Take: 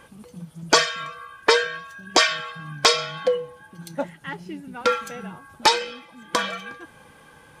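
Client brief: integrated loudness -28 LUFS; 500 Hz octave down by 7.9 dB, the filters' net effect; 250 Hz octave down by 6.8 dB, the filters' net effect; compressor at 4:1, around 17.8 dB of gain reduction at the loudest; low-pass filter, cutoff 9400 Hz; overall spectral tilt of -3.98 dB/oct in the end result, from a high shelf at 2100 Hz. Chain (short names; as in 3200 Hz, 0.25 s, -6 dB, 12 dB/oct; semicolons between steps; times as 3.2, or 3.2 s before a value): LPF 9400 Hz; bell 250 Hz -7.5 dB; bell 500 Hz -6.5 dB; high shelf 2100 Hz -9 dB; compressor 4:1, threshold -40 dBFS; gain +15.5 dB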